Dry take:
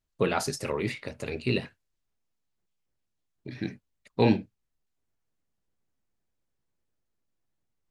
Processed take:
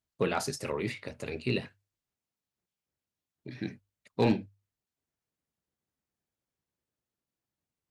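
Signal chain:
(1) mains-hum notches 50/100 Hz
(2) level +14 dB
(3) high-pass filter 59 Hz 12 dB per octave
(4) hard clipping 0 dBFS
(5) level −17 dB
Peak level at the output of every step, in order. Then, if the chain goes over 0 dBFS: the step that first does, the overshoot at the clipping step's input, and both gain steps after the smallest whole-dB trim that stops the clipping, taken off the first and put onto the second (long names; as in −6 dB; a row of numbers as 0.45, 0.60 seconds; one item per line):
−9.0, +5.0, +4.0, 0.0, −17.0 dBFS
step 2, 4.0 dB
step 2 +10 dB, step 5 −13 dB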